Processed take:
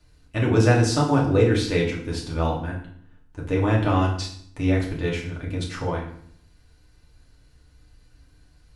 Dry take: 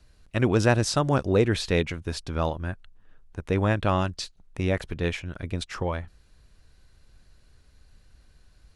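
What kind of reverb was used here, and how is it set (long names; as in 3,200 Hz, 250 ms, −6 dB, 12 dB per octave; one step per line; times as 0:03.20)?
feedback delay network reverb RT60 0.61 s, low-frequency decay 1.45×, high-frequency decay 0.85×, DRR −3.5 dB
level −3.5 dB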